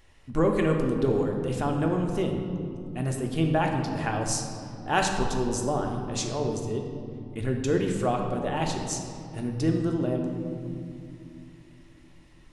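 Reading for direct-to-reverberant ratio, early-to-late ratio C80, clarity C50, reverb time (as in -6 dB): 1.5 dB, 5.5 dB, 4.0 dB, 2.6 s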